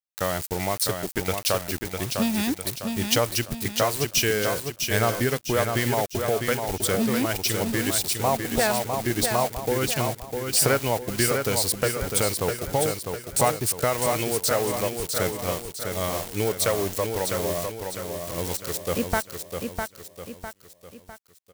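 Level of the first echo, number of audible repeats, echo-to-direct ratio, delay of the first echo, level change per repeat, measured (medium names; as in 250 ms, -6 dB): -5.5 dB, 5, -4.5 dB, 653 ms, -7.0 dB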